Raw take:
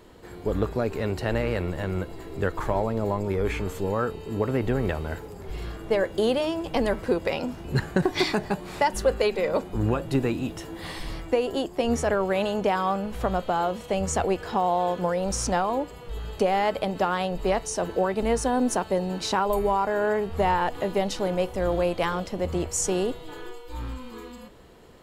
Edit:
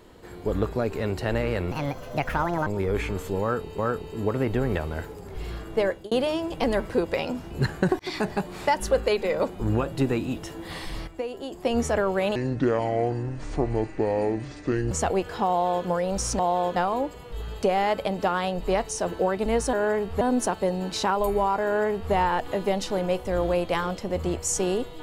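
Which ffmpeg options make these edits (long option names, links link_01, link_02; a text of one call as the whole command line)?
ffmpeg -i in.wav -filter_complex "[0:a]asplit=14[link_01][link_02][link_03][link_04][link_05][link_06][link_07][link_08][link_09][link_10][link_11][link_12][link_13][link_14];[link_01]atrim=end=1.714[link_15];[link_02]atrim=start=1.71:end=3.17,asetpts=PTS-STARTPTS,asetrate=67473,aresample=44100,atrim=end_sample=42082,asetpts=PTS-STARTPTS[link_16];[link_03]atrim=start=3.166:end=4.292[link_17];[link_04]atrim=start=3.918:end=6.25,asetpts=PTS-STARTPTS,afade=type=out:start_time=2.072:duration=0.26[link_18];[link_05]atrim=start=6.25:end=8.13,asetpts=PTS-STARTPTS,afade=type=in:duration=0.004:curve=hsin,afade=type=out:start_time=1.876:duration=0.004:curve=hsin[link_19];[link_06]atrim=start=8.13:end=11.212,asetpts=PTS-STARTPTS,afade=type=in:duration=0.26[link_20];[link_07]atrim=start=11.208:end=11.662,asetpts=PTS-STARTPTS,volume=-8dB[link_21];[link_08]atrim=start=11.658:end=12.494[link_22];[link_09]atrim=start=12.49:end=14.05,asetpts=PTS-STARTPTS,asetrate=26901,aresample=44100,atrim=end_sample=112780,asetpts=PTS-STARTPTS[link_23];[link_10]atrim=start=14.046:end=15.532[link_24];[link_11]atrim=start=14.628:end=15.002[link_25];[link_12]atrim=start=15.528:end=18.502[link_26];[link_13]atrim=start=19.938:end=20.422[link_27];[link_14]atrim=start=18.498[link_28];[link_15][link_16]acrossfade=duration=0.004:curve1=hsin:curve2=hsin[link_29];[link_29][link_17]acrossfade=duration=0.004:curve1=hsin:curve2=hsin[link_30];[link_18][link_19][link_20]concat=n=3:v=0:a=1[link_31];[link_30][link_31]acrossfade=duration=0.004:curve1=hsin:curve2=hsin[link_32];[link_32][link_21]acrossfade=duration=0.004:curve1=hsin:curve2=hsin[link_33];[link_33][link_22]acrossfade=duration=0.004:curve1=hsin:curve2=hsin[link_34];[link_34][link_23]acrossfade=duration=0.004:curve1=hsin:curve2=hsin[link_35];[link_35][link_24]acrossfade=duration=0.004:curve1=hsin:curve2=hsin[link_36];[link_36][link_25]acrossfade=duration=0.004:curve1=hsin:curve2=hsin[link_37];[link_37][link_26]acrossfade=duration=0.004:curve1=hsin:curve2=hsin[link_38];[link_38][link_27]acrossfade=duration=0.004:curve1=hsin:curve2=hsin[link_39];[link_39][link_28]acrossfade=duration=0.004:curve1=hsin:curve2=hsin" out.wav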